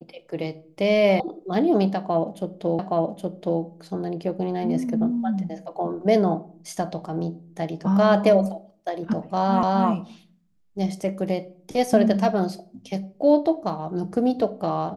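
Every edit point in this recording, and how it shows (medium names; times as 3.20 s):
1.20 s: sound stops dead
2.79 s: repeat of the last 0.82 s
9.63 s: repeat of the last 0.26 s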